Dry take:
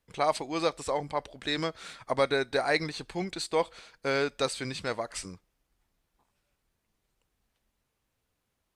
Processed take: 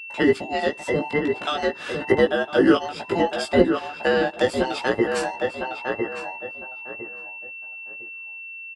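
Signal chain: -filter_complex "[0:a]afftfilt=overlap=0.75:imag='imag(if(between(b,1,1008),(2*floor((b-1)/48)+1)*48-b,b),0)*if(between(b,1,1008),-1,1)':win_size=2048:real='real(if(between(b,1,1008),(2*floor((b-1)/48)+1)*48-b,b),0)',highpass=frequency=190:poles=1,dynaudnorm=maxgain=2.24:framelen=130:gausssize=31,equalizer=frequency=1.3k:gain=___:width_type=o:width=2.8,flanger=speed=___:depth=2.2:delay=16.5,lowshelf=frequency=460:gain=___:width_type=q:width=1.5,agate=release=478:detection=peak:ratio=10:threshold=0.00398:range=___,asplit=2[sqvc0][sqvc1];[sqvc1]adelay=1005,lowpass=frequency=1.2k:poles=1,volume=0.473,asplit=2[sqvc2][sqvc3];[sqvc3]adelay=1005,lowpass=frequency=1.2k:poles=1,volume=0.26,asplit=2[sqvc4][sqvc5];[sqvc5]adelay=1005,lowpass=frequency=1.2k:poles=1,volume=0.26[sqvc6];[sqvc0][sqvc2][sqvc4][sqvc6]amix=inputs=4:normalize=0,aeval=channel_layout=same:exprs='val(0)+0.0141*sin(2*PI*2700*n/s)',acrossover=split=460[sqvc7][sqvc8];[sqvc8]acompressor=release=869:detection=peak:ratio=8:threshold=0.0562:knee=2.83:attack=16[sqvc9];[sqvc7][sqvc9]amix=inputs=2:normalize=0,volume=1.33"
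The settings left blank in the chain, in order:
12.5, 0.59, 7.5, 0.0282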